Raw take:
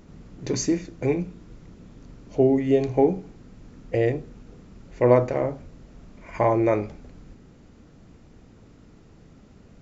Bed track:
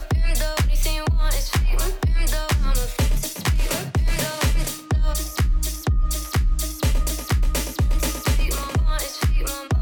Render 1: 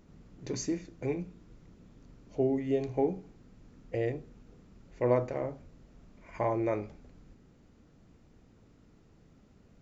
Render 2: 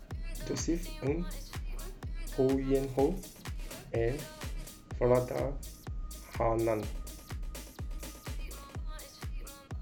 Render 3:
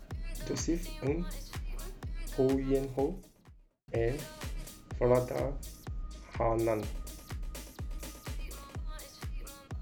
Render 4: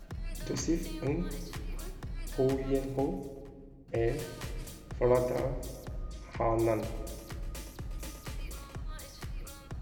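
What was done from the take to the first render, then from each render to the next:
level −9.5 dB
mix in bed track −20.5 dB
0:02.52–0:03.88: fade out and dull; 0:06.02–0:06.51: high-frequency loss of the air 100 metres
rectangular room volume 2,600 cubic metres, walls mixed, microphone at 0.8 metres

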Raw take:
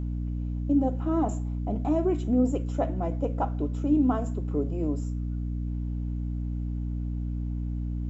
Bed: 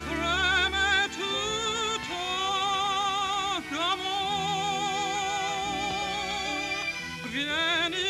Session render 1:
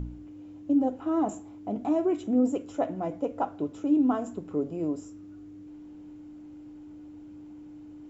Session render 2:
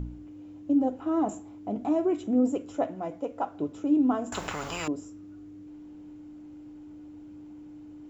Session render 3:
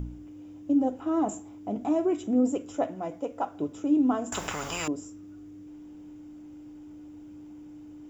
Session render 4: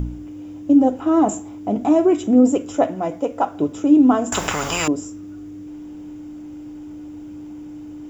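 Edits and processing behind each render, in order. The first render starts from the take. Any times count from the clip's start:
hum removal 60 Hz, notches 4
0:02.87–0:03.55: low-shelf EQ 440 Hz −6 dB; 0:04.32–0:04.88: every bin compressed towards the loudest bin 10 to 1
high-shelf EQ 4,900 Hz +8 dB; notch filter 4,200 Hz, Q 8.7
level +10.5 dB

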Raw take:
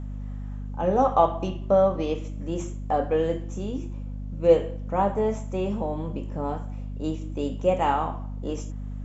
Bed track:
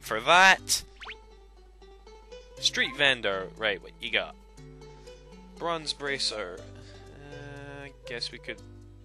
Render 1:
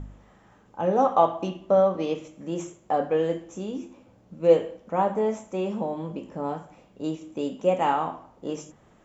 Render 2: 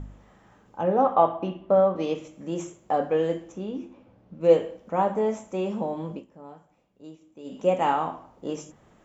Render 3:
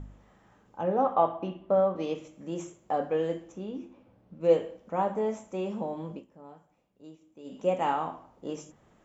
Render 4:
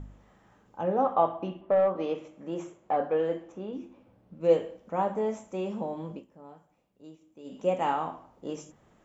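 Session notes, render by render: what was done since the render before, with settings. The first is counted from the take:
hum removal 50 Hz, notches 5
0:00.83–0:01.96: low-pass filter 2,700 Hz; 0:03.52–0:04.41: high-frequency loss of the air 170 metres; 0:06.13–0:07.57: duck −14.5 dB, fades 0.13 s
level −4.5 dB
0:01.61–0:03.73: mid-hump overdrive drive 12 dB, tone 1,100 Hz, clips at −14 dBFS

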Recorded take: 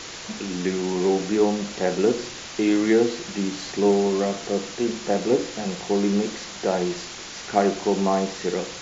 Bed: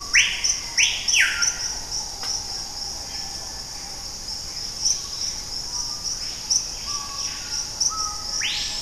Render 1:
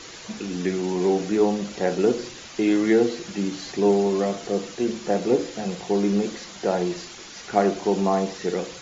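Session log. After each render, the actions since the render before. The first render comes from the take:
broadband denoise 7 dB, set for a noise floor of −37 dBFS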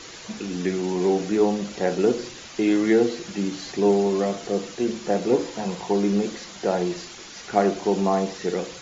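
0:05.33–0:05.93: parametric band 950 Hz +11 dB 0.3 octaves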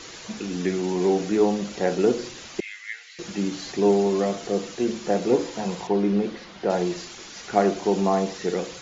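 0:02.60–0:03.19: four-pole ladder high-pass 1,800 Hz, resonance 60%
0:05.87–0:06.70: high-frequency loss of the air 180 metres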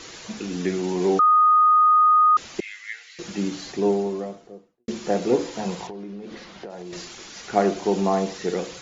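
0:01.19–0:02.37: beep over 1,240 Hz −12.5 dBFS
0:03.46–0:04.88: fade out and dull
0:05.88–0:06.93: downward compressor 16 to 1, threshold −32 dBFS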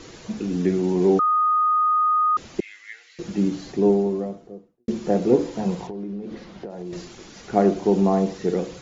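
tilt shelving filter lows +6.5 dB, about 640 Hz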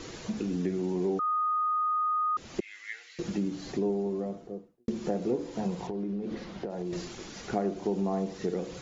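downward compressor 3 to 1, threshold −30 dBFS, peak gain reduction 14 dB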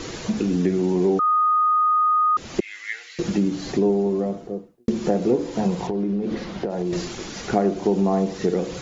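level +9.5 dB

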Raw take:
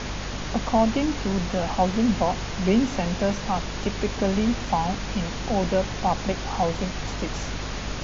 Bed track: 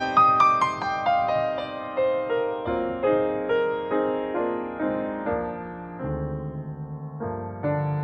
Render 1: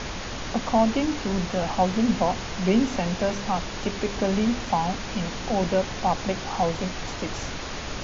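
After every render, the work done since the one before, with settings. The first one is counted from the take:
hum removal 50 Hz, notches 9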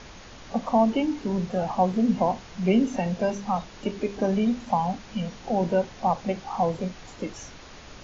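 noise reduction from a noise print 12 dB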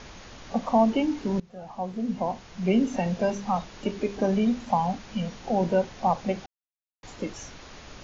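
0:01.40–0:03.02: fade in, from −22.5 dB
0:06.46–0:07.03: silence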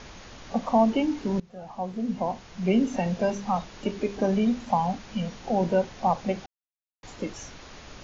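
no processing that can be heard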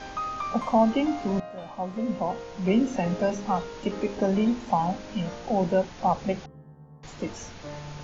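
mix in bed track −14.5 dB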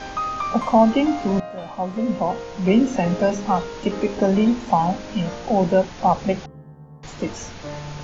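level +6 dB

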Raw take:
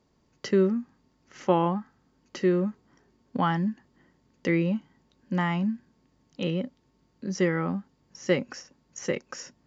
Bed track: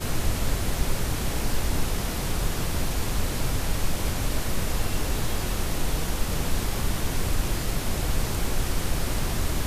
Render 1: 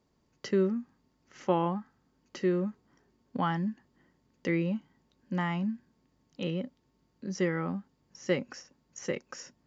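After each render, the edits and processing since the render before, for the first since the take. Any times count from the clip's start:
level −4.5 dB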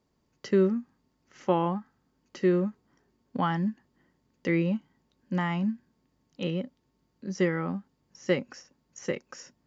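in parallel at −0.5 dB: brickwall limiter −21.5 dBFS, peak gain reduction 9 dB
on the sum: expander for the loud parts 1.5 to 1, over −33 dBFS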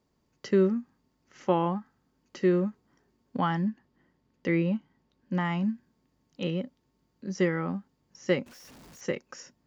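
0:03.61–0:05.45: high-frequency loss of the air 73 metres
0:08.46–0:09.01: sign of each sample alone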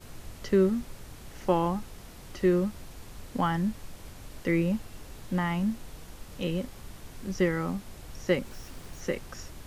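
mix in bed track −18.5 dB

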